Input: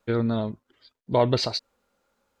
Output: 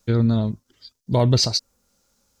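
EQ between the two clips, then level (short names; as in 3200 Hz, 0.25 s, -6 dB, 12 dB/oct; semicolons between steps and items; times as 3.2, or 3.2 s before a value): tone controls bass +12 dB, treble +14 dB; bell 5600 Hz +8 dB 0.71 oct; dynamic EQ 4200 Hz, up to -5 dB, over -38 dBFS, Q 0.81; -1.5 dB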